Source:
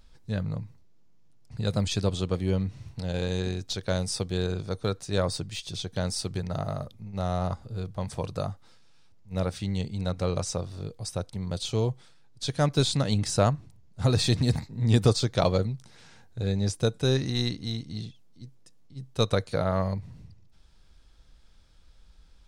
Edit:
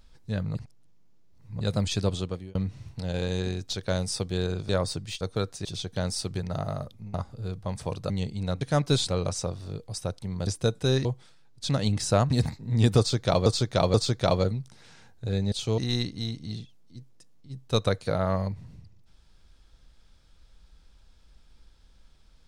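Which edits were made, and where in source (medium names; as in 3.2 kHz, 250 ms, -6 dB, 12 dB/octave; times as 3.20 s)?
0.55–1.61 s: reverse
2.14–2.55 s: fade out
4.69–5.13 s: move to 5.65 s
7.14–7.46 s: delete
8.42–9.68 s: delete
11.58–11.84 s: swap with 16.66–17.24 s
12.48–12.95 s: move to 10.19 s
13.56–14.40 s: delete
15.08–15.56 s: loop, 3 plays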